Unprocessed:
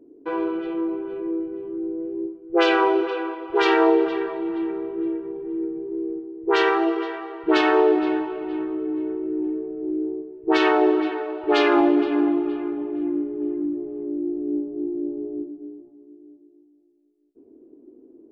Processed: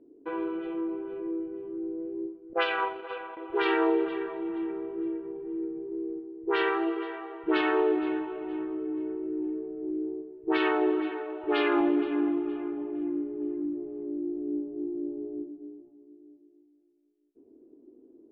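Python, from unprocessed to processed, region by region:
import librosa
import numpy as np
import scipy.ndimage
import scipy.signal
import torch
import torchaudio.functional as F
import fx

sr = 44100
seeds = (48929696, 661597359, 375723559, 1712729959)

y = fx.chain(x, sr, fx.highpass(hz=500.0, slope=24),
    fx.transient(attack_db=7, sustain_db=-10), at=(2.53, 3.37))
y = scipy.signal.sosfilt(scipy.signal.butter(4, 3500.0, 'lowpass', fs=sr, output='sos'), y)
y = fx.dynamic_eq(y, sr, hz=670.0, q=1.6, threshold_db=-32.0, ratio=4.0, max_db=-5)
y = F.gain(torch.from_numpy(y), -6.0).numpy()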